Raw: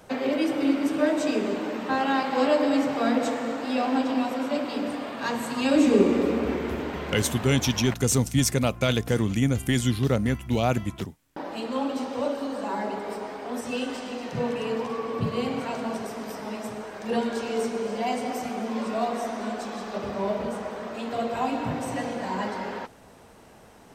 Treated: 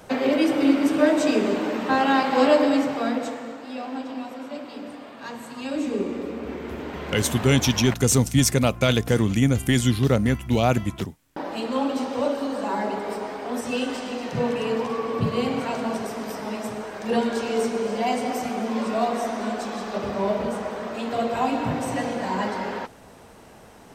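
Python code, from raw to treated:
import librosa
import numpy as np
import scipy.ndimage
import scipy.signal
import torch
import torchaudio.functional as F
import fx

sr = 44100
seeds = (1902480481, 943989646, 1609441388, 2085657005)

y = fx.gain(x, sr, db=fx.line((2.55, 4.5), (3.63, -7.5), (6.34, -7.5), (7.39, 3.5)))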